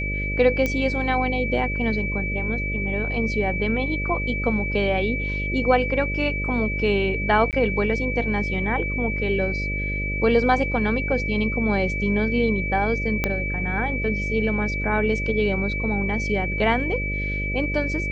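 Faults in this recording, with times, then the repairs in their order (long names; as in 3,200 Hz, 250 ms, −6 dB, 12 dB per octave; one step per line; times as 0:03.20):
mains buzz 50 Hz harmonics 12 −28 dBFS
whistle 2,300 Hz −27 dBFS
0:00.66: click −11 dBFS
0:07.51–0:07.53: drop-out 18 ms
0:13.24: click −8 dBFS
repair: click removal
hum removal 50 Hz, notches 12
notch filter 2,300 Hz, Q 30
repair the gap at 0:07.51, 18 ms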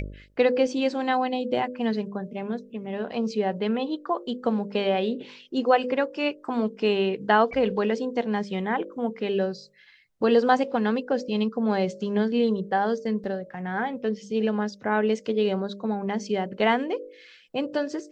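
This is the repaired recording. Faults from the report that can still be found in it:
0:13.24: click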